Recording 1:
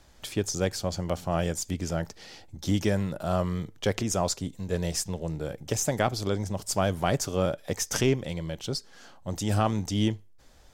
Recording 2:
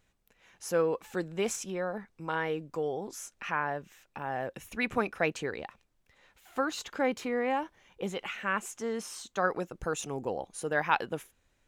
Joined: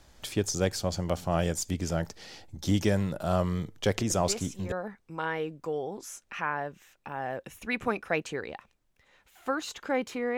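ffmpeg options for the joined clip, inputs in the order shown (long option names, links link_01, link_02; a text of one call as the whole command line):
ffmpeg -i cue0.wav -i cue1.wav -filter_complex "[1:a]asplit=2[link_01][link_02];[0:a]apad=whole_dur=10.37,atrim=end=10.37,atrim=end=4.722[link_03];[link_02]atrim=start=1.818:end=7.47[link_04];[link_01]atrim=start=1.2:end=1.82,asetpts=PTS-STARTPTS,volume=-6.5dB,afade=type=in:duration=0.004:curve=hsin,afade=type=out:start_time=0.616:duration=0.004:curve=hsin,adelay=4100[link_05];[link_03][link_04]acrossfade=duration=0.004:curve1=hsin:curve2=hsin[link_06];[link_06][link_05]amix=inputs=2:normalize=0" out.wav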